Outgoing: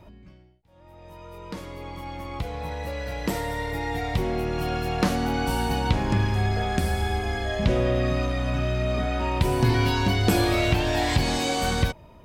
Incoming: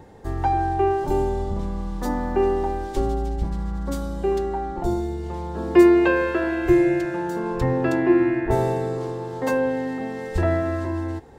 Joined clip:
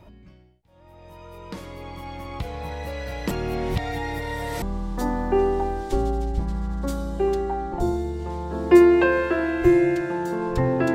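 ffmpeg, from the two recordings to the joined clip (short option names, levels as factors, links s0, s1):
-filter_complex "[0:a]apad=whole_dur=10.94,atrim=end=10.94,asplit=2[s0][s1];[s0]atrim=end=3.312[s2];[s1]atrim=start=3.308:end=4.622,asetpts=PTS-STARTPTS,areverse[s3];[1:a]atrim=start=1.658:end=7.98[s4];[s2][s3]acrossfade=d=0.004:c1=hsin:c2=hsin[s5];[s5][s4]acrossfade=d=0.004:c1=hsin:c2=hsin"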